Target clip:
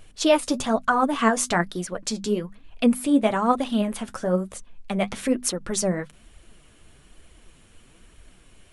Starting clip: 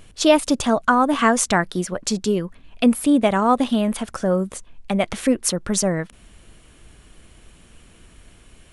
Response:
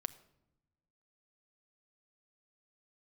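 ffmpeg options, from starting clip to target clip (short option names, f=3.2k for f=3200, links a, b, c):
-af "bandreject=f=50:t=h:w=6,bandreject=f=100:t=h:w=6,bandreject=f=150:t=h:w=6,bandreject=f=200:t=h:w=6,bandreject=f=250:t=h:w=6,flanger=delay=1.2:depth=9.7:regen=42:speed=1.1:shape=triangular"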